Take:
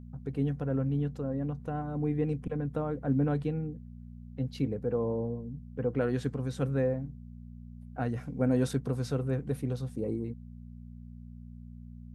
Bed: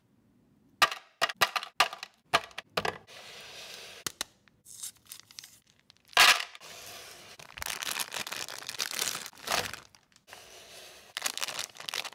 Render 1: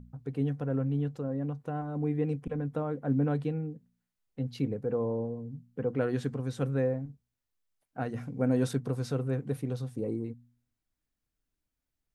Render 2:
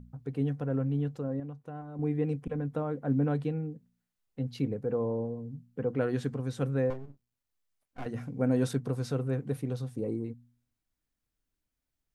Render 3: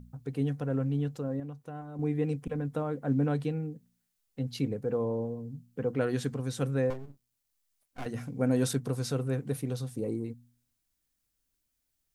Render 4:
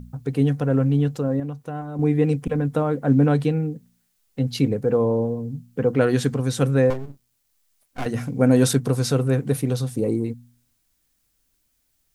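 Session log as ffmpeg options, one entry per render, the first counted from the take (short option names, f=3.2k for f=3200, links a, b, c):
-af "bandreject=f=60:t=h:w=4,bandreject=f=120:t=h:w=4,bandreject=f=180:t=h:w=4,bandreject=f=240:t=h:w=4"
-filter_complex "[0:a]asettb=1/sr,asplit=3[a][b][c];[a]atrim=end=6.904[d];[b]atrim=start=6.9:end=8.06,asetpts=PTS-STARTPTS,afade=t=in:d=0.004:c=qsin,afade=t=out:st=1.156:d=0.004:c=qsin,aeval=exprs='max(val(0),0)':c=same[e];[c]atrim=start=8.056[f];[d][e]acrossfade=d=0.004:c1=hsin:c2=qsin[g];[g][f]acrossfade=d=0.004:c1=qsin:c2=hsin,asplit=3[h][i][j];[h]atrim=end=1.402[k];[i]atrim=start=1.398:end=1.992,asetpts=PTS-STARTPTS,volume=-7dB[l];[j]atrim=start=1.988[m];[k][l]acrossfade=d=0.004:c1=hsin:c2=hsin[n];[n][m]acrossfade=d=0.004:c1=hsin:c2=hsin"
-af "highshelf=f=3.6k:g=10.5"
-af "volume=10.5dB"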